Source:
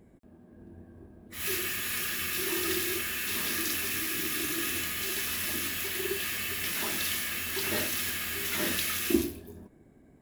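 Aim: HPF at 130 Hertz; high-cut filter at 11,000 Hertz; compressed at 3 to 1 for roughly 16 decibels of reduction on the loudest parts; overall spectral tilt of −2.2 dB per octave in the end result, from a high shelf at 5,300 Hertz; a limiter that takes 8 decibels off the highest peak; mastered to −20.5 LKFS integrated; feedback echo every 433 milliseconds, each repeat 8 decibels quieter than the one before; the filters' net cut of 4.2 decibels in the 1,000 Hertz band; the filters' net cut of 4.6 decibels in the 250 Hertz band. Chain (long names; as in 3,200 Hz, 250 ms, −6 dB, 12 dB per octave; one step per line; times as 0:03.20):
high-pass filter 130 Hz
low-pass filter 11,000 Hz
parametric band 250 Hz −6 dB
parametric band 1,000 Hz −5 dB
high-shelf EQ 5,300 Hz −7.5 dB
downward compressor 3 to 1, threshold −47 dBFS
brickwall limiter −37.5 dBFS
repeating echo 433 ms, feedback 40%, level −8 dB
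level +24.5 dB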